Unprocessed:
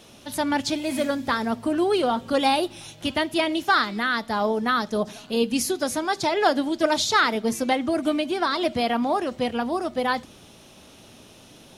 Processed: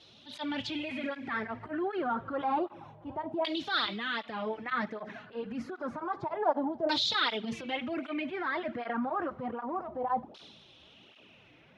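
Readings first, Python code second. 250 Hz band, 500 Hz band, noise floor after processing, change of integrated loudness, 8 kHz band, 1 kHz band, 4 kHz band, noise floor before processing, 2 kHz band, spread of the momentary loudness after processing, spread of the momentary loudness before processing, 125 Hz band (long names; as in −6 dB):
−11.0 dB, −11.0 dB, −58 dBFS, −9.5 dB, −21.5 dB, −9.0 dB, −7.0 dB, −49 dBFS, −9.5 dB, 10 LU, 6 LU, −9.0 dB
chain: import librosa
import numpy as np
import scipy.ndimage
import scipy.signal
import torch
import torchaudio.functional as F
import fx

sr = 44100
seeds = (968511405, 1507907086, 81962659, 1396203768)

y = fx.filter_lfo_lowpass(x, sr, shape='saw_down', hz=0.29, low_hz=770.0, high_hz=4200.0, q=3.6)
y = fx.transient(y, sr, attack_db=-8, sustain_db=6)
y = fx.flanger_cancel(y, sr, hz=1.3, depth_ms=5.2)
y = y * 10.0 ** (-8.5 / 20.0)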